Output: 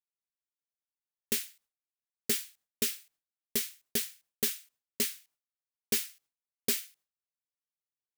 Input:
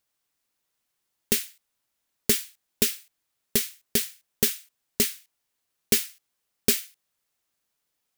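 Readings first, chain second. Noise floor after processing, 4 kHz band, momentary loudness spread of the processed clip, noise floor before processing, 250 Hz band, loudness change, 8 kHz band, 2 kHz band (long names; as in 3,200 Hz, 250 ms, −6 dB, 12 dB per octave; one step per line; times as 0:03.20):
below −85 dBFS, −6.5 dB, 13 LU, −80 dBFS, −9.0 dB, −7.0 dB, −7.0 dB, −6.5 dB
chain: noise gate with hold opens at −53 dBFS
soft clipping −15.5 dBFS, distortion −13 dB
level −4.5 dB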